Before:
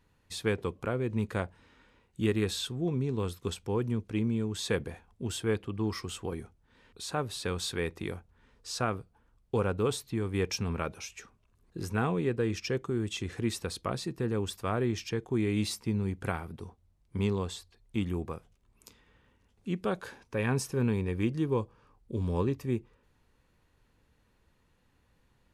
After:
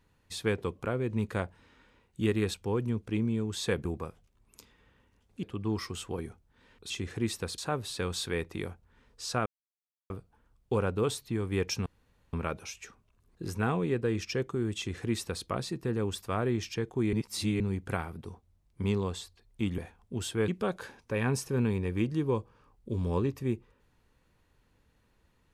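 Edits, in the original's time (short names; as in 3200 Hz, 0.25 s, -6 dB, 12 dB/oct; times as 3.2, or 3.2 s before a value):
2.54–3.56 cut
4.87–5.57 swap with 18.13–19.71
8.92 insert silence 0.64 s
10.68 insert room tone 0.47 s
13.12–13.8 copy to 7.04
15.48–15.95 reverse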